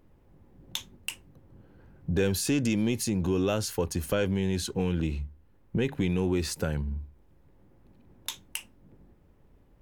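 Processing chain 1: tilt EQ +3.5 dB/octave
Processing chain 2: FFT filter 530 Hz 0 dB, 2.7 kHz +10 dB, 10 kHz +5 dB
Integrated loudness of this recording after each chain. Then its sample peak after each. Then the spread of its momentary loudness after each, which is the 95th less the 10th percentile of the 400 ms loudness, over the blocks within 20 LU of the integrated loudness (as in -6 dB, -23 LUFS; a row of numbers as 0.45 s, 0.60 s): -28.0 LUFS, -27.0 LUFS; -3.5 dBFS, -5.5 dBFS; 14 LU, 11 LU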